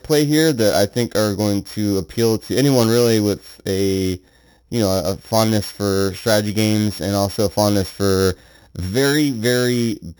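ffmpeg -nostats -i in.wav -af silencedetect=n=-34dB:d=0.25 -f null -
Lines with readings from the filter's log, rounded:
silence_start: 4.17
silence_end: 4.72 | silence_duration: 0.55
silence_start: 8.34
silence_end: 8.75 | silence_duration: 0.42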